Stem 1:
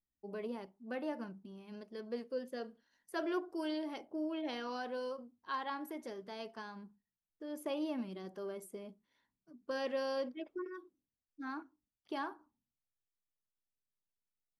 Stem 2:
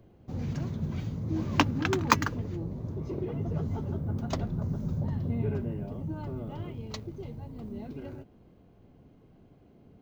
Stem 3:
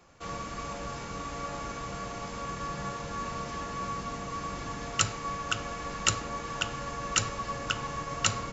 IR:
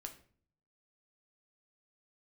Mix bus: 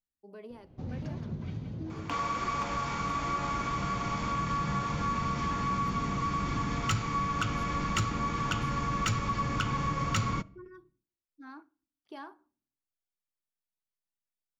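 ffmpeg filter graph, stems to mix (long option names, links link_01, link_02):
-filter_complex "[0:a]volume=-6.5dB,asplit=2[link_01][link_02];[link_02]volume=-9.5dB[link_03];[1:a]lowpass=5300,asoftclip=type=hard:threshold=-11.5dB,adelay=500,volume=-3.5dB,afade=type=out:start_time=1.59:duration=0.48:silence=0.298538,asplit=3[link_04][link_05][link_06];[link_05]volume=-4.5dB[link_07];[link_06]volume=-5.5dB[link_08];[2:a]aecho=1:1:0.9:0.33,asubboost=boost=7:cutoff=240,asplit=2[link_09][link_10];[link_10]highpass=frequency=720:poles=1,volume=20dB,asoftclip=type=tanh:threshold=-5dB[link_11];[link_09][link_11]amix=inputs=2:normalize=0,lowpass=frequency=2300:poles=1,volume=-6dB,adelay=1900,volume=0.5dB,asplit=2[link_12][link_13];[link_13]volume=-11.5dB[link_14];[3:a]atrim=start_sample=2205[link_15];[link_03][link_07][link_14]amix=inputs=3:normalize=0[link_16];[link_16][link_15]afir=irnorm=-1:irlink=0[link_17];[link_08]aecho=0:1:172:1[link_18];[link_01][link_04][link_12][link_17][link_18]amix=inputs=5:normalize=0,acompressor=threshold=-36dB:ratio=2"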